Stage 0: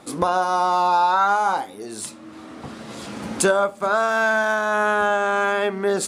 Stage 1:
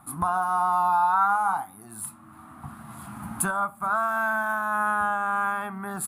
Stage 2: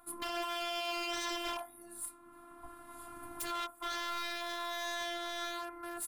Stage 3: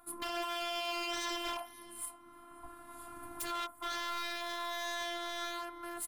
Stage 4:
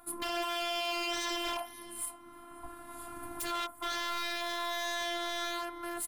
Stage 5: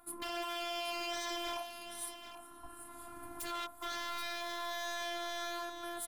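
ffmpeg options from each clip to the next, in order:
-af "firequalizer=gain_entry='entry(140,0);entry(490,-29);entry(710,-6);entry(1200,0);entry(1900,-12);entry(3000,-17);entry(5700,-23);entry(11000,7)':delay=0.05:min_phase=1"
-af "aeval=exprs='0.0531*(abs(mod(val(0)/0.0531+3,4)-2)-1)':c=same,afftfilt=real='hypot(re,im)*cos(PI*b)':imag='0':win_size=512:overlap=0.75,volume=-3.5dB"
-filter_complex "[0:a]asplit=2[a][b];[b]adelay=535,lowpass=f=2.4k:p=1,volume=-16.5dB,asplit=2[c][d];[d]adelay=535,lowpass=f=2.4k:p=1,volume=0.26,asplit=2[e][f];[f]adelay=535,lowpass=f=2.4k:p=1,volume=0.26[g];[a][c][e][g]amix=inputs=4:normalize=0"
-filter_complex "[0:a]equalizer=f=1.2k:t=o:w=0.46:g=-3.5,asplit=2[a][b];[b]alimiter=level_in=2dB:limit=-24dB:level=0:latency=1,volume=-2dB,volume=1dB[c];[a][c]amix=inputs=2:normalize=0,volume=-1.5dB"
-af "aecho=1:1:412|782:0.141|0.299,volume=-5dB"

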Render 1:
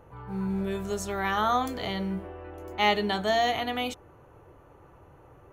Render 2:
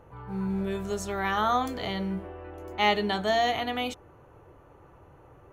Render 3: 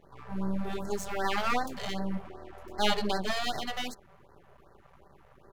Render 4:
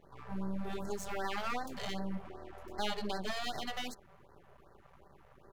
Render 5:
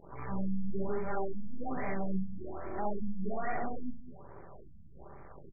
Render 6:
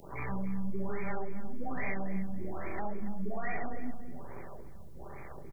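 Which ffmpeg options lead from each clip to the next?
-af "highshelf=f=9.6k:g=-4.5"
-af "aecho=1:1:5.1:0.6,aeval=exprs='max(val(0),0)':c=same,afftfilt=real='re*(1-between(b*sr/1024,260*pow(2900/260,0.5+0.5*sin(2*PI*2.6*pts/sr))/1.41,260*pow(2900/260,0.5+0.5*sin(2*PI*2.6*pts/sr))*1.41))':imag='im*(1-between(b*sr/1024,260*pow(2900/260,0.5+0.5*sin(2*PI*2.6*pts/sr))/1.41,260*pow(2900/260,0.5+0.5*sin(2*PI*2.6*pts/sr))*1.41))':win_size=1024:overlap=0.75"
-af "acompressor=threshold=-31dB:ratio=2.5,volume=-2.5dB"
-filter_complex "[0:a]asoftclip=type=tanh:threshold=-34.5dB,asplit=2[a][b];[b]aecho=0:1:64.14|204.1:0.794|0.316[c];[a][c]amix=inputs=2:normalize=0,afftfilt=real='re*lt(b*sr/1024,240*pow(2500/240,0.5+0.5*sin(2*PI*1.2*pts/sr)))':imag='im*lt(b*sr/1024,240*pow(2500/240,0.5+0.5*sin(2*PI*1.2*pts/sr)))':win_size=1024:overlap=0.75,volume=7dB"
-filter_complex "[0:a]acrossover=split=210|960[a][b][c];[a]acompressor=threshold=-35dB:ratio=4[d];[b]acompressor=threshold=-46dB:ratio=4[e];[c]acompressor=threshold=-49dB:ratio=4[f];[d][e][f]amix=inputs=3:normalize=0,aexciter=amount=4:drive=8.2:freq=2.1k,asplit=2[g][h];[h]adelay=282,lowpass=f=1.9k:p=1,volume=-11dB,asplit=2[i][j];[j]adelay=282,lowpass=f=1.9k:p=1,volume=0.32,asplit=2[k][l];[l]adelay=282,lowpass=f=1.9k:p=1,volume=0.32[m];[g][i][k][m]amix=inputs=4:normalize=0,volume=4dB"

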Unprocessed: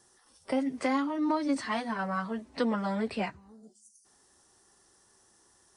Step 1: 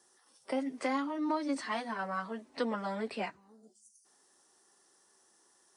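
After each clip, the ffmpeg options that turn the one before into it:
-af "highpass=250,volume=-3dB"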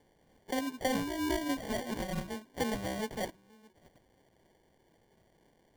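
-af "acrusher=samples=34:mix=1:aa=0.000001"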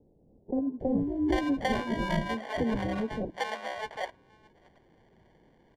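-filter_complex "[0:a]acrossover=split=570[a][b];[b]adelay=800[c];[a][c]amix=inputs=2:normalize=0,adynamicsmooth=sensitivity=1.5:basefreq=3.4k,adynamicequalizer=threshold=0.00126:dfrequency=5900:dqfactor=0.72:tfrequency=5900:tqfactor=0.72:attack=5:release=100:ratio=0.375:range=2:mode=cutabove:tftype=bell,volume=7dB"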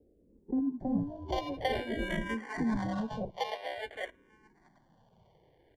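-filter_complex "[0:a]asplit=2[a][b];[b]afreqshift=-0.51[c];[a][c]amix=inputs=2:normalize=1"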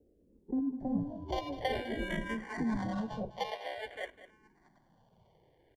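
-af "aecho=1:1:203:0.178,volume=-2dB"

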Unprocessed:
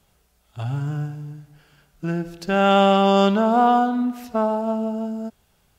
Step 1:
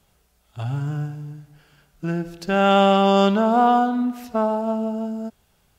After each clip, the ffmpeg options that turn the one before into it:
-af anull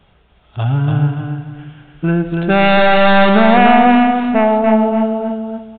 -filter_complex "[0:a]aeval=exprs='0.596*sin(PI/2*2.82*val(0)/0.596)':c=same,asplit=2[a][b];[b]aecho=0:1:287|574|861|1148:0.631|0.17|0.046|0.0124[c];[a][c]amix=inputs=2:normalize=0,aresample=8000,aresample=44100,volume=-2dB"

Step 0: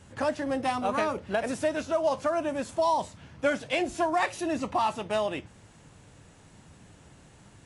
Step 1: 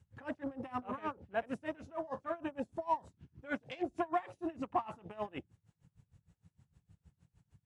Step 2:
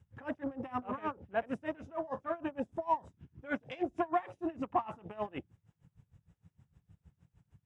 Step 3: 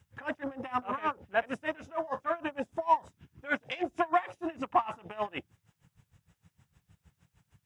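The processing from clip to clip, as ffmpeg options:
-af "afwtdn=0.0112,bandreject=f=610:w=12,aeval=exprs='val(0)*pow(10,-24*(0.5-0.5*cos(2*PI*6.5*n/s))/20)':c=same,volume=-3.5dB"
-af "highshelf=f=5.3k:g=-10,bandreject=f=4.3k:w=5.9,volume=2.5dB"
-af "tiltshelf=f=740:g=-6.5,volume=4.5dB"

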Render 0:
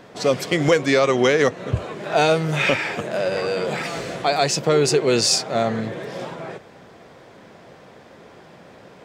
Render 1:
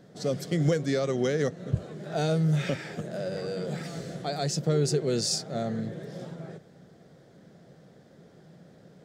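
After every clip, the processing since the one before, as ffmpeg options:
-af "equalizer=f=160:t=o:w=0.67:g=10,equalizer=f=1k:t=o:w=0.67:g=-12,equalizer=f=2.5k:t=o:w=0.67:g=-11,volume=-9dB"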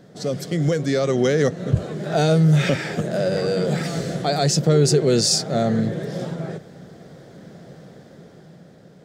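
-filter_complex "[0:a]asplit=2[a][b];[b]alimiter=limit=-23.5dB:level=0:latency=1:release=29,volume=-1dB[c];[a][c]amix=inputs=2:normalize=0,dynaudnorm=f=190:g=11:m=6dB"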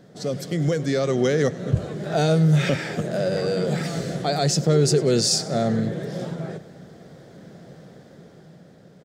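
-af "aecho=1:1:97|194|291|388:0.1|0.054|0.0292|0.0157,volume=-2dB"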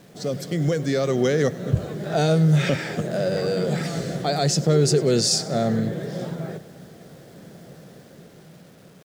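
-af "acrusher=bits=8:mix=0:aa=0.000001"

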